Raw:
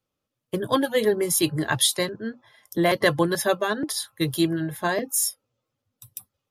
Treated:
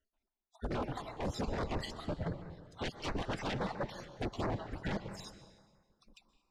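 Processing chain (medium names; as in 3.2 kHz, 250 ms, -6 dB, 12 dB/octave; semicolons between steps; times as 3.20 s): random holes in the spectrogram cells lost 58%; band-stop 3.3 kHz, Q 10; spectral gate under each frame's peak -15 dB weak; tilt EQ -4.5 dB/octave; peak limiter -29 dBFS, peak gain reduction 10 dB; wavefolder -39.5 dBFS; distance through air 100 m; reverberation RT60 1.6 s, pre-delay 113 ms, DRR 10 dB; step-sequenced notch 12 Hz 950–3200 Hz; trim +11 dB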